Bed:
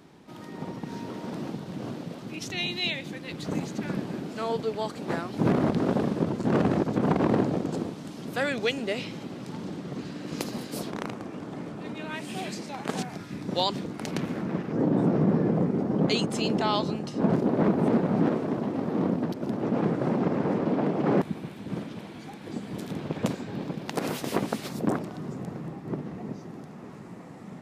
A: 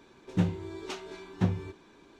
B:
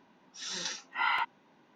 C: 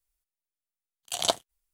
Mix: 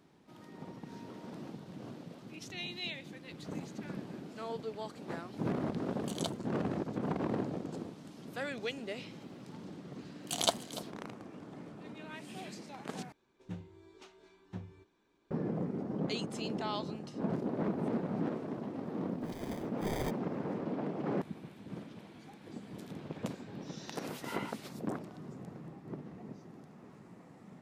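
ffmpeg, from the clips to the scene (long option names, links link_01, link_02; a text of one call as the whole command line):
ffmpeg -i bed.wav -i cue0.wav -i cue1.wav -i cue2.wav -filter_complex "[3:a]asplit=2[link_01][link_02];[2:a]asplit=2[link_03][link_04];[0:a]volume=-11dB[link_05];[link_02]aecho=1:1:293:0.168[link_06];[link_03]acrusher=samples=32:mix=1:aa=0.000001[link_07];[link_05]asplit=2[link_08][link_09];[link_08]atrim=end=13.124[link_10];[1:a]atrim=end=2.19,asetpts=PTS-STARTPTS,volume=-17dB[link_11];[link_09]atrim=start=15.306[link_12];[link_01]atrim=end=1.73,asetpts=PTS-STARTPTS,volume=-14.5dB,afade=type=in:duration=0.004:curve=hsin,afade=type=out:start_time=1.726:duration=0.004:curve=hsin,adelay=4960[link_13];[link_06]atrim=end=1.73,asetpts=PTS-STARTPTS,volume=-4.5dB,afade=type=in:duration=0.004:curve=hsin,afade=type=out:start_time=1.726:duration=0.004:curve=hsin,adelay=9190[link_14];[link_07]atrim=end=1.75,asetpts=PTS-STARTPTS,volume=-8dB,afade=type=in:duration=0.004:curve=hsin,afade=type=out:start_time=1.746:duration=0.004:curve=hsin,adelay=18860[link_15];[link_04]atrim=end=1.75,asetpts=PTS-STARTPTS,volume=-15.5dB,afade=type=in:duration=0.004:curve=hsin,afade=type=out:start_time=1.746:duration=0.004:curve=hsin,adelay=23270[link_16];[link_10][link_11]acrossfade=duration=0.004:curve1=hsin:curve2=hsin[link_17];[link_17][link_12]acrossfade=duration=0.004:curve1=hsin:curve2=hsin[link_18];[link_18][link_13][link_14][link_15][link_16]amix=inputs=5:normalize=0" out.wav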